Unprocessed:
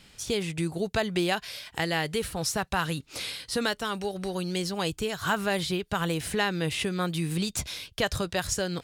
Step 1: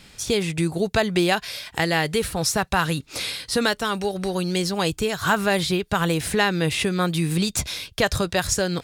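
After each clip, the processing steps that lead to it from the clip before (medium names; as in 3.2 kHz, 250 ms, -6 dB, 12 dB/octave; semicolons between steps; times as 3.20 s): band-stop 3 kHz, Q 22; trim +6.5 dB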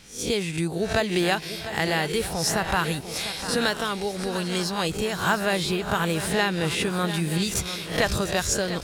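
reverse spectral sustain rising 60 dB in 0.38 s; shuffle delay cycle 933 ms, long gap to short 3:1, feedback 36%, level -12 dB; trim -4 dB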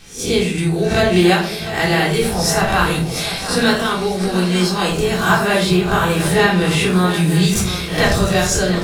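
reverberation RT60 0.45 s, pre-delay 3 ms, DRR -4 dB; trim +2.5 dB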